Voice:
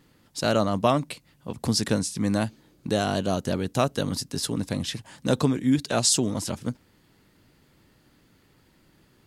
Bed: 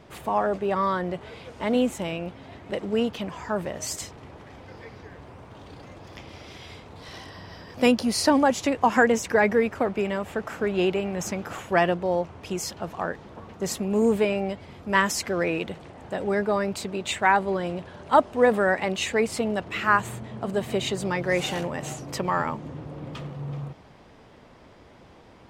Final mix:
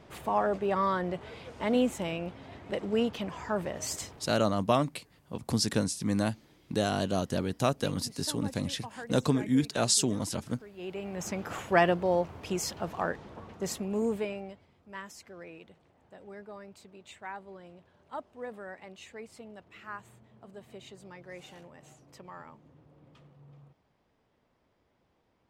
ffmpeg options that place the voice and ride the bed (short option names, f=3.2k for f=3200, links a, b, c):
-filter_complex "[0:a]adelay=3850,volume=-4dB[a];[1:a]volume=18.5dB,afade=t=out:st=4.01:d=0.45:silence=0.0944061,afade=t=in:st=10.76:d=0.81:silence=0.0794328,afade=t=out:st=13.08:d=1.63:silence=0.105925[b];[a][b]amix=inputs=2:normalize=0"